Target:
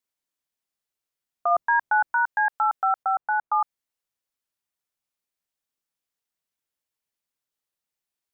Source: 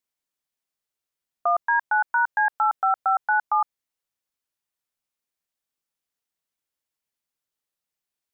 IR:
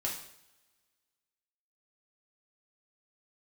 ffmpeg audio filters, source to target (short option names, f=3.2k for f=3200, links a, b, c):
-filter_complex "[0:a]asplit=3[a][b][c];[a]afade=t=out:st=1.5:d=0.02[d];[b]lowshelf=f=490:g=9.5,afade=t=in:st=1.5:d=0.02,afade=t=out:st=2.12:d=0.02[e];[c]afade=t=in:st=2.12:d=0.02[f];[d][e][f]amix=inputs=3:normalize=0,asettb=1/sr,asplit=3[g][h][i];[g]atrim=end=3.034[j];[h]atrim=start=3.03:end=3.52,asetpts=PTS-STARTPTS,afade=t=in:d=0.004:c=qsin,afade=t=out:st=0.486:d=0.004:c=qsin,lowpass=1.4k[k];[i]atrim=start=3.516[l];[j][k]acrossfade=d=0.004:c1=hsin:c2=qsin[m];[m][l]acrossfade=d=0.004:c1=qsin:c2=hsin,volume=-1dB"